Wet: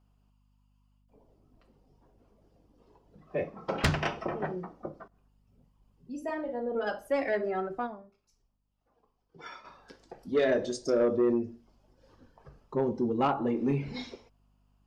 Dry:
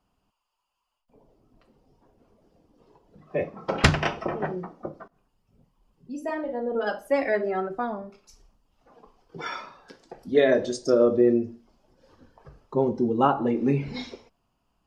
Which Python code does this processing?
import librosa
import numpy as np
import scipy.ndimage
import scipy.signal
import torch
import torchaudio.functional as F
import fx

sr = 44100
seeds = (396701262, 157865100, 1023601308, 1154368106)

y = 10.0 ** (-14.0 / 20.0) * np.tanh(x / 10.0 ** (-14.0 / 20.0))
y = fx.add_hum(y, sr, base_hz=50, snr_db=34)
y = fx.upward_expand(y, sr, threshold_db=-45.0, expansion=1.5, at=(7.86, 9.64), fade=0.02)
y = F.gain(torch.from_numpy(y), -4.0).numpy()